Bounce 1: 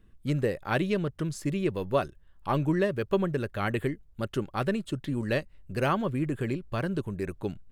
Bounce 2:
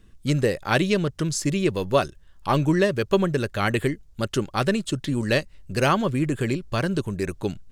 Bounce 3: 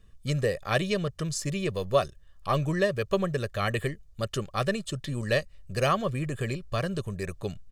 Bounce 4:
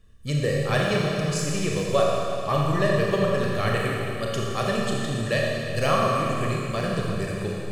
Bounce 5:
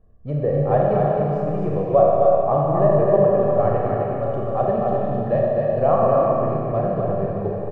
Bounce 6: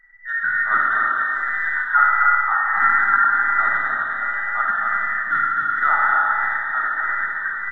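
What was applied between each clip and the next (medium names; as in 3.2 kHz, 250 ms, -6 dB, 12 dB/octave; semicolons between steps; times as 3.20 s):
peaking EQ 6.1 kHz +10.5 dB 1.6 oct; trim +5.5 dB
comb 1.7 ms, depth 58%; trim -6 dB
Schroeder reverb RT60 2.8 s, combs from 27 ms, DRR -3 dB
resonant low-pass 750 Hz, resonance Q 3.5; delay 258 ms -3.5 dB
every band turned upside down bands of 2 kHz; trim -1 dB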